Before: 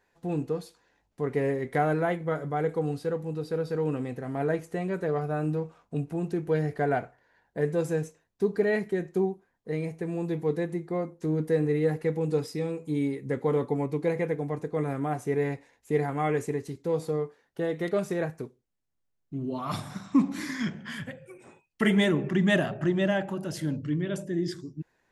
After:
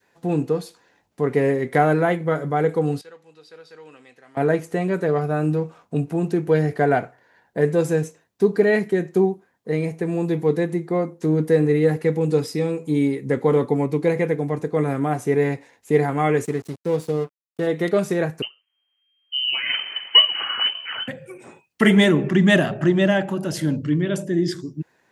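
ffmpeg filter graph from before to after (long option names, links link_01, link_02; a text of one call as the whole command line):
ffmpeg -i in.wav -filter_complex "[0:a]asettb=1/sr,asplit=3[link_01][link_02][link_03];[link_01]atrim=end=3.014[link_04];[link_02]atrim=start=3.01:end=4.37,asetpts=PTS-STARTPTS,afade=type=in:duration=0.004:curve=qsin,afade=type=out:start_time=1.356:duration=0.004:curve=qsin,lowpass=3900,aderivative[link_05];[link_03]atrim=start=4.366[link_06];[link_04][link_05]acrossfade=duration=0.004:curve1=hsin:curve2=qsin[link_07];[link_07][link_06]acrossfade=duration=0.004:curve1=qsin:curve2=hsin,asettb=1/sr,asplit=3[link_08][link_09][link_10];[link_08]atrim=end=16.454[link_11];[link_09]atrim=start=16.45:end=17.67,asetpts=PTS-STARTPTS,afade=type=in:duration=0.004:curve=qsin,afade=type=out:start_time=1.216:duration=0.004:curve=qsin,equalizer=frequency=960:width=0.56:gain=-3.5,aeval=exprs='sgn(val(0))*max(abs(val(0))-0.00447,0)':channel_layout=same[link_12];[link_10]atrim=start=17.666[link_13];[link_11][link_12]acrossfade=duration=0.004:curve1=hsin:curve2=qsin[link_14];[link_14][link_13]acrossfade=duration=0.004:curve1=qsin:curve2=hsin,asettb=1/sr,asplit=3[link_15][link_16][link_17];[link_15]atrim=end=18.424[link_18];[link_16]atrim=start=18.42:end=21.08,asetpts=PTS-STARTPTS,afade=type=in:duration=0.004:curve=qsin,afade=type=out:start_time=2.656:duration=0.004:curve=qsin,acrusher=samples=13:mix=1:aa=0.000001:lfo=1:lforange=13:lforate=1.8,lowpass=frequency=2700:width_type=q:width=0.5098,lowpass=frequency=2700:width_type=q:width=0.6013,lowpass=frequency=2700:width_type=q:width=0.9,lowpass=frequency=2700:width_type=q:width=2.563,afreqshift=-3200[link_19];[link_17]atrim=start=21.076[link_20];[link_18][link_19]acrossfade=duration=0.004:curve1=hsin:curve2=qsin[link_21];[link_21][link_20]acrossfade=duration=0.004:curve1=qsin:curve2=hsin,adynamicequalizer=threshold=0.0158:dfrequency=820:dqfactor=0.8:tfrequency=820:tqfactor=0.8:attack=5:release=100:ratio=0.375:range=1.5:mode=cutabove:tftype=bell,highpass=110,volume=8.5dB" out.wav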